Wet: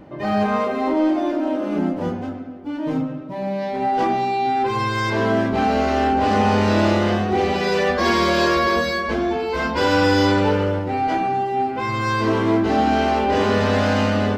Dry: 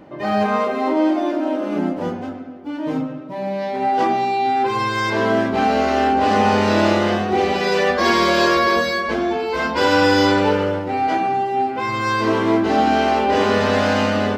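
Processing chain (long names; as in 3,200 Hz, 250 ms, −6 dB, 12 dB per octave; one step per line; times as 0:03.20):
low-shelf EQ 130 Hz +11 dB
in parallel at −5 dB: soft clipping −13 dBFS, distortion −14 dB
on the sum: level −5.5 dB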